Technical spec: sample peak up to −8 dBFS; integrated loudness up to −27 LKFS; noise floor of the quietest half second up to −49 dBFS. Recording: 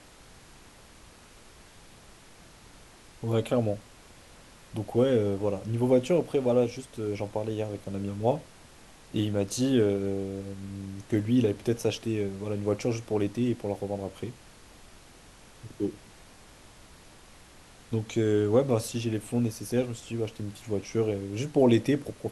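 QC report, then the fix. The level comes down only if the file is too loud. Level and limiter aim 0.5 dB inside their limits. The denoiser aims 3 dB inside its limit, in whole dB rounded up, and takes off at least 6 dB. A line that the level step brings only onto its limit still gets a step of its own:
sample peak −10.0 dBFS: in spec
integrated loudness −28.5 LKFS: in spec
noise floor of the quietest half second −52 dBFS: in spec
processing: no processing needed

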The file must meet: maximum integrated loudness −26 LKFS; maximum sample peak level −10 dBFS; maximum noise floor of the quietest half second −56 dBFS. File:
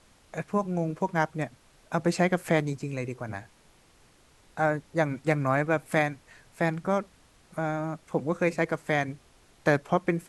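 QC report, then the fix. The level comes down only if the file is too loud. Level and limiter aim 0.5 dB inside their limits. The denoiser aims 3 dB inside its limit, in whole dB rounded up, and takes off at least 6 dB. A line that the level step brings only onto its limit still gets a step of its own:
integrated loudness −28.5 LKFS: in spec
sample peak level −8.0 dBFS: out of spec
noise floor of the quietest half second −60 dBFS: in spec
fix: brickwall limiter −10.5 dBFS

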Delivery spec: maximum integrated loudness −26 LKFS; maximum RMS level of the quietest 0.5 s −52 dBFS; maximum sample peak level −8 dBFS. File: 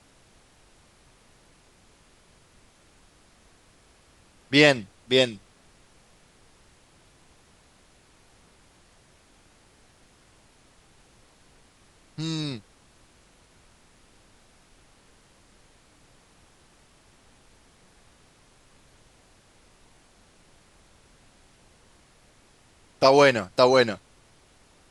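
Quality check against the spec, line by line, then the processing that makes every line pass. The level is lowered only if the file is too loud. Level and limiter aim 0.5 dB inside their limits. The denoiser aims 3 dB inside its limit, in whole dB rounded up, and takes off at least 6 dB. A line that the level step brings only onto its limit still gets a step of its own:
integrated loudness −21.5 LKFS: out of spec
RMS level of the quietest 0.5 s −58 dBFS: in spec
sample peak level −2.5 dBFS: out of spec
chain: level −5 dB
brickwall limiter −8.5 dBFS

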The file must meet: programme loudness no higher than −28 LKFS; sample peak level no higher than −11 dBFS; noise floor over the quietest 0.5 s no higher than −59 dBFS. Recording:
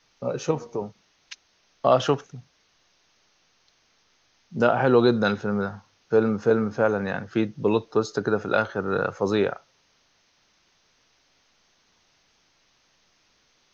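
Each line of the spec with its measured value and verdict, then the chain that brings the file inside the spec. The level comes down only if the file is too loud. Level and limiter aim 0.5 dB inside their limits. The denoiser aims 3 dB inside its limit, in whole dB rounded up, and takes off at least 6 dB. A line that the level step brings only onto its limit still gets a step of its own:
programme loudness −24.0 LKFS: out of spec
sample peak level −6.5 dBFS: out of spec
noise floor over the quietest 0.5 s −65 dBFS: in spec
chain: level −4.5 dB
brickwall limiter −11.5 dBFS

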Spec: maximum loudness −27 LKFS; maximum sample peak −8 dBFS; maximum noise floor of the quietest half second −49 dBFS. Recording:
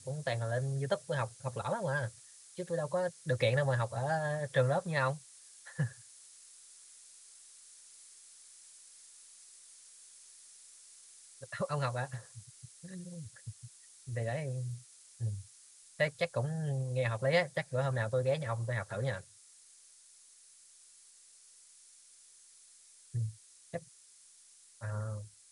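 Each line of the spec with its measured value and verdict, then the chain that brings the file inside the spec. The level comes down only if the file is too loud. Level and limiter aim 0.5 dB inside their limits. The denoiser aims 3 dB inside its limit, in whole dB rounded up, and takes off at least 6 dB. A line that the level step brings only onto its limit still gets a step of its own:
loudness −35.5 LKFS: in spec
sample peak −16.0 dBFS: in spec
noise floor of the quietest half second −60 dBFS: in spec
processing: no processing needed

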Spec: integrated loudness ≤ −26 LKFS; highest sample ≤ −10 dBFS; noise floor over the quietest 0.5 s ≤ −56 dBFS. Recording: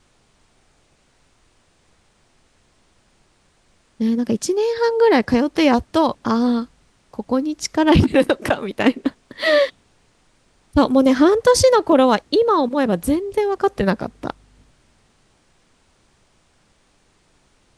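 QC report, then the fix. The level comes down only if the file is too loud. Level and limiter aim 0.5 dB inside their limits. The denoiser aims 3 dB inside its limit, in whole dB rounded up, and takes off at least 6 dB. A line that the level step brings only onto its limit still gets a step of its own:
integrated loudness −18.0 LKFS: out of spec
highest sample −3.5 dBFS: out of spec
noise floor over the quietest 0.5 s −60 dBFS: in spec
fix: level −8.5 dB

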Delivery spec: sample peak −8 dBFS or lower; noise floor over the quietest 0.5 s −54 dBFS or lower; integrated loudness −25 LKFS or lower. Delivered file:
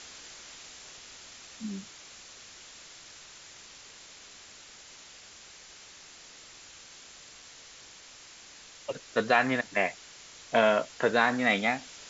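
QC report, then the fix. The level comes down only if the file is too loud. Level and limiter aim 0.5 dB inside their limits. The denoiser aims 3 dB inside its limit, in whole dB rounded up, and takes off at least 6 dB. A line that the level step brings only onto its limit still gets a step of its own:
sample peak −9.5 dBFS: in spec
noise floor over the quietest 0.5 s −51 dBFS: out of spec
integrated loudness −27.5 LKFS: in spec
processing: broadband denoise 6 dB, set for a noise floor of −51 dBFS

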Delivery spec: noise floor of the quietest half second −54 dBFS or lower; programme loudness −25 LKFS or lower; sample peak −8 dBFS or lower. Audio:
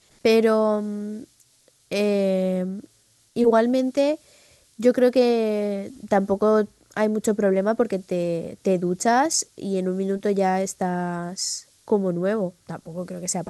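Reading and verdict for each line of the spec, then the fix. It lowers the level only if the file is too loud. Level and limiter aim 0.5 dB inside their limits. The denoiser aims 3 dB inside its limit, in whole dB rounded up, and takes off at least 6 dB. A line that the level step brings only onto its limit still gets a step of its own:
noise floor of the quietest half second −60 dBFS: in spec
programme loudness −22.5 LKFS: out of spec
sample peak −6.5 dBFS: out of spec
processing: level −3 dB

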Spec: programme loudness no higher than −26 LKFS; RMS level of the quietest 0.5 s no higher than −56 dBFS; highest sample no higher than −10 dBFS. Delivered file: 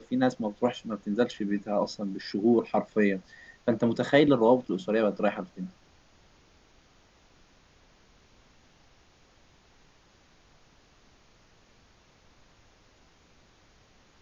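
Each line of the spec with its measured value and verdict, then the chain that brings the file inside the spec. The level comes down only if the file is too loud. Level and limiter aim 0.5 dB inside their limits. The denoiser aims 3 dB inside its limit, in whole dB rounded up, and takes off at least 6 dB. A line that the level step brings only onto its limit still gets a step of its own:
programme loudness −27.0 LKFS: in spec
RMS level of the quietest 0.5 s −61 dBFS: in spec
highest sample −8.5 dBFS: out of spec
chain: brickwall limiter −10.5 dBFS

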